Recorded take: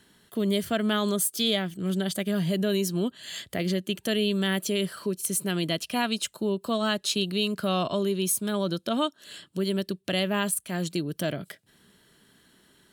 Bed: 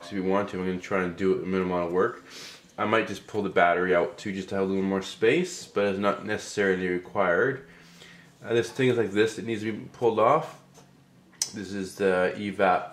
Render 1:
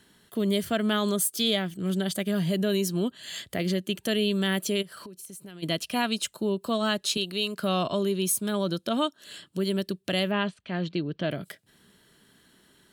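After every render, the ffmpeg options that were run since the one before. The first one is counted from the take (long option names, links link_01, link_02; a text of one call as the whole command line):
ffmpeg -i in.wav -filter_complex "[0:a]asplit=3[link_01][link_02][link_03];[link_01]afade=type=out:start_time=4.81:duration=0.02[link_04];[link_02]acompressor=threshold=-39dB:ratio=20:attack=3.2:release=140:knee=1:detection=peak,afade=type=in:start_time=4.81:duration=0.02,afade=type=out:start_time=5.62:duration=0.02[link_05];[link_03]afade=type=in:start_time=5.62:duration=0.02[link_06];[link_04][link_05][link_06]amix=inputs=3:normalize=0,asettb=1/sr,asplit=3[link_07][link_08][link_09];[link_07]atrim=end=7.174[link_10];[link_08]atrim=start=7.17:end=7.61,asetpts=PTS-STARTPTS,afade=type=in:duration=0.004:curve=qsin,afade=type=out:start_time=0.436:duration=0.004:curve=qsin,highpass=frequency=380:poles=1[link_11];[link_09]atrim=start=7.606[link_12];[link_10][link_11]acrossfade=duration=0.004:curve1=hsin:curve2=qsin[link_13];[link_13][link_12]acrossfade=duration=0.004:curve1=qsin:curve2=hsin,asettb=1/sr,asplit=3[link_14][link_15][link_16];[link_14]atrim=end=10.314[link_17];[link_15]atrim=start=10.31:end=11.31,asetpts=PTS-STARTPTS,afade=type=in:duration=0.004:curve=qsin,afade=type=out:start_time=0.996:duration=0.004:curve=qsin,lowpass=frequency=3900:width=0.5412,lowpass=frequency=3900:width=1.3066[link_18];[link_16]atrim=start=11.306[link_19];[link_17][link_18]acrossfade=duration=0.004:curve1=hsin:curve2=qsin[link_20];[link_20][link_19]acrossfade=duration=0.004:curve1=qsin:curve2=hsin" out.wav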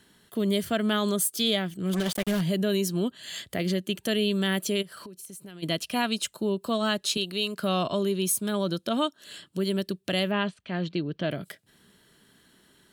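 ffmpeg -i in.wav -filter_complex "[0:a]asettb=1/sr,asplit=3[link_01][link_02][link_03];[link_01]atrim=end=1.934[link_04];[link_02]atrim=start=1.93:end=2.41,asetpts=PTS-STARTPTS,afade=type=in:duration=0.004:curve=qsin,afade=type=out:start_time=0.476:duration=0.004:curve=qsin,acrusher=bits=4:mix=0:aa=0.5[link_05];[link_03]atrim=start=2.406[link_06];[link_04][link_05]acrossfade=duration=0.004:curve1=hsin:curve2=qsin[link_07];[link_07][link_06]acrossfade=duration=0.004:curve1=qsin:curve2=hsin" out.wav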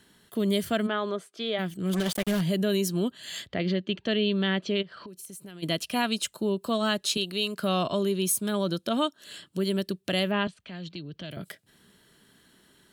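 ffmpeg -i in.wav -filter_complex "[0:a]asplit=3[link_01][link_02][link_03];[link_01]afade=type=out:start_time=0.86:duration=0.02[link_04];[link_02]highpass=340,lowpass=2200,afade=type=in:start_time=0.86:duration=0.02,afade=type=out:start_time=1.58:duration=0.02[link_05];[link_03]afade=type=in:start_time=1.58:duration=0.02[link_06];[link_04][link_05][link_06]amix=inputs=3:normalize=0,asettb=1/sr,asplit=3[link_07][link_08][link_09];[link_07]atrim=end=3.474[link_10];[link_08]atrim=start=3.47:end=5.08,asetpts=PTS-STARTPTS,afade=type=in:duration=0.004:curve=qsin,afade=type=out:start_time=1.606:duration=0.004:curve=qsin,lowpass=frequency=4300:width=0.5412,lowpass=frequency=4300:width=1.3066[link_11];[link_09]atrim=start=5.076[link_12];[link_10][link_11]acrossfade=duration=0.004:curve1=hsin:curve2=qsin[link_13];[link_13][link_12]acrossfade=duration=0.004:curve1=qsin:curve2=hsin,asettb=1/sr,asplit=3[link_14][link_15][link_16];[link_14]atrim=end=10.474[link_17];[link_15]atrim=start=10.47:end=11.37,asetpts=PTS-STARTPTS,afade=type=in:duration=0.004:curve=qsin,afade=type=out:start_time=0.896:duration=0.004:curve=qsin,acrossover=split=120|3000[link_18][link_19][link_20];[link_19]acompressor=threshold=-43dB:ratio=3:attack=3.2:release=140:knee=2.83:detection=peak[link_21];[link_18][link_21][link_20]amix=inputs=3:normalize=0[link_22];[link_16]atrim=start=11.366[link_23];[link_17][link_22]acrossfade=duration=0.004:curve1=hsin:curve2=qsin[link_24];[link_24][link_23]acrossfade=duration=0.004:curve1=qsin:curve2=hsin" out.wav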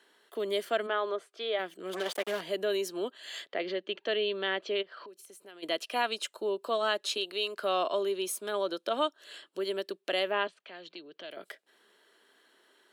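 ffmpeg -i in.wav -af "highpass=frequency=380:width=0.5412,highpass=frequency=380:width=1.3066,highshelf=frequency=4800:gain=-12" out.wav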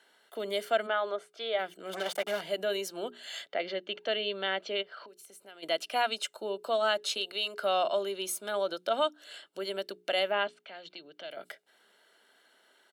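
ffmpeg -i in.wav -af "bandreject=frequency=60:width_type=h:width=6,bandreject=frequency=120:width_type=h:width=6,bandreject=frequency=180:width_type=h:width=6,bandreject=frequency=240:width_type=h:width=6,bandreject=frequency=300:width_type=h:width=6,bandreject=frequency=360:width_type=h:width=6,bandreject=frequency=420:width_type=h:width=6,aecho=1:1:1.4:0.43" out.wav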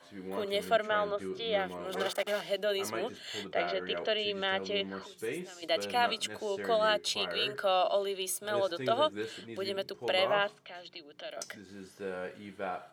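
ffmpeg -i in.wav -i bed.wav -filter_complex "[1:a]volume=-15dB[link_01];[0:a][link_01]amix=inputs=2:normalize=0" out.wav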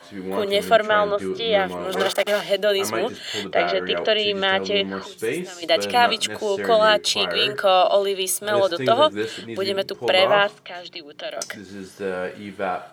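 ffmpeg -i in.wav -af "volume=11.5dB" out.wav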